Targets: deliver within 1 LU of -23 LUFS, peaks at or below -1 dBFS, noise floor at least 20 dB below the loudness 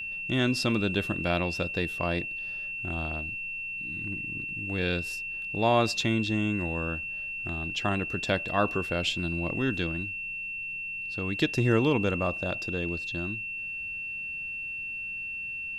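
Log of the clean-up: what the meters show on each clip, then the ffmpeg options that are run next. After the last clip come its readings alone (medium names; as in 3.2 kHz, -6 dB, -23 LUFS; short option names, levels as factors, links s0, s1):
steady tone 2.7 kHz; tone level -33 dBFS; loudness -29.5 LUFS; peak level -11.0 dBFS; loudness target -23.0 LUFS
-> -af "bandreject=f=2700:w=30"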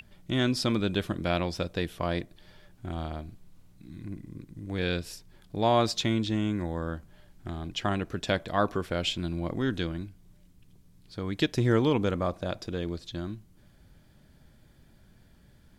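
steady tone not found; loudness -30.0 LUFS; peak level -11.0 dBFS; loudness target -23.0 LUFS
-> -af "volume=2.24"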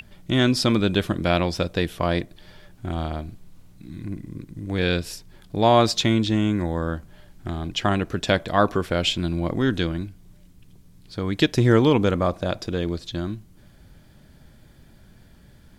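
loudness -23.0 LUFS; peak level -4.0 dBFS; noise floor -52 dBFS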